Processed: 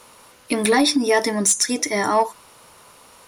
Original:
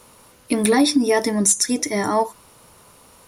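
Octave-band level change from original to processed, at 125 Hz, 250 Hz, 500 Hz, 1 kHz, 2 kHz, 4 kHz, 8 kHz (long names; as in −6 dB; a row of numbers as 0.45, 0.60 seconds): −3.5, −2.5, 0.0, +2.0, +3.5, +2.0, −0.5 decibels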